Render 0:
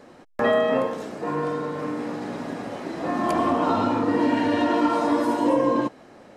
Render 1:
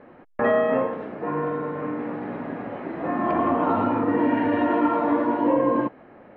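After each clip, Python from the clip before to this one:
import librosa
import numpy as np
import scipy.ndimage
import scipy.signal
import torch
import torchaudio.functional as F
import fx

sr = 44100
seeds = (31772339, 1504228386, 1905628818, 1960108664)

y = scipy.signal.sosfilt(scipy.signal.butter(4, 2400.0, 'lowpass', fs=sr, output='sos'), x)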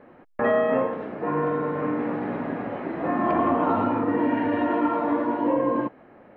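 y = fx.rider(x, sr, range_db=3, speed_s=2.0)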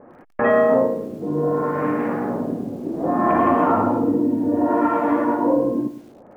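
y = fx.filter_lfo_lowpass(x, sr, shape='sine', hz=0.64, low_hz=310.0, high_hz=2600.0, q=1.0)
y = fx.echo_crushed(y, sr, ms=106, feedback_pct=35, bits=8, wet_db=-12.5)
y = F.gain(torch.from_numpy(y), 4.0).numpy()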